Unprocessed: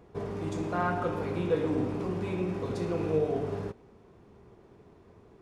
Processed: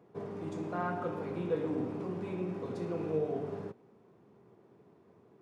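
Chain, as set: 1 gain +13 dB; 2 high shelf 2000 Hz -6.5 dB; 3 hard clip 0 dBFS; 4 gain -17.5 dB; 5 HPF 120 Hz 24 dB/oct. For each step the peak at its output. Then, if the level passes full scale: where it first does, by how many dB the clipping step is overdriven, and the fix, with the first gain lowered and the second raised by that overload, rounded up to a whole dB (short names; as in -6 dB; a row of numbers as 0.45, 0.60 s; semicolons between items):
-1.5, -2.0, -2.0, -19.5, -20.5 dBFS; no overload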